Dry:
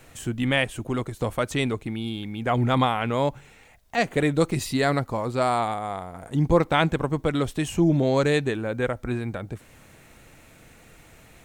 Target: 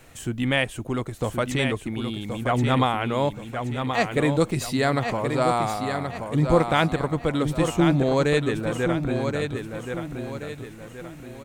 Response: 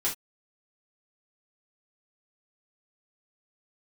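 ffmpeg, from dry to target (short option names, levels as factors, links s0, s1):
-af "aecho=1:1:1076|2152|3228|4304|5380:0.473|0.189|0.0757|0.0303|0.0121"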